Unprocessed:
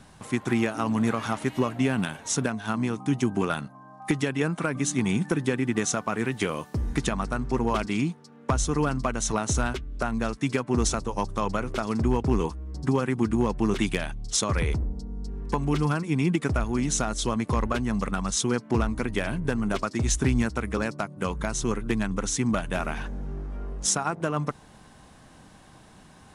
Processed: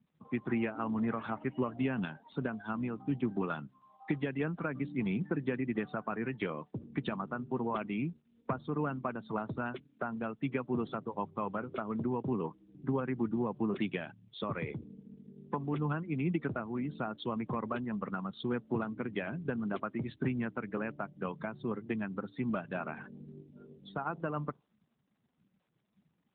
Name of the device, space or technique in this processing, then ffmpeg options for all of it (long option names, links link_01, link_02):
mobile call with aggressive noise cancelling: -af "highpass=frequency=120:width=0.5412,highpass=frequency=120:width=1.3066,afftdn=noise_reduction=32:noise_floor=-37,volume=-7.5dB" -ar 8000 -c:a libopencore_amrnb -b:a 12200